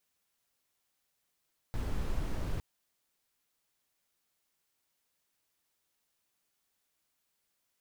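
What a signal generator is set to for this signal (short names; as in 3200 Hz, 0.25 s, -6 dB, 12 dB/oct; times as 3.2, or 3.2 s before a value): noise brown, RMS -32.5 dBFS 0.86 s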